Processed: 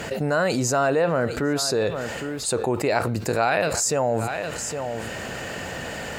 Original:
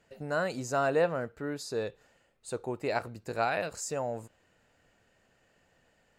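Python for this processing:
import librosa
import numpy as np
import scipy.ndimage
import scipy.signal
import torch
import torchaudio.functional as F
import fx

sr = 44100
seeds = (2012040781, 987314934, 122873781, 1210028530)

y = scipy.signal.sosfilt(scipy.signal.butter(2, 54.0, 'highpass', fs=sr, output='sos'), x)
y = y + 10.0 ** (-23.0 / 20.0) * np.pad(y, (int(810 * sr / 1000.0), 0))[:len(y)]
y = fx.env_flatten(y, sr, amount_pct=70)
y = y * 10.0 ** (4.0 / 20.0)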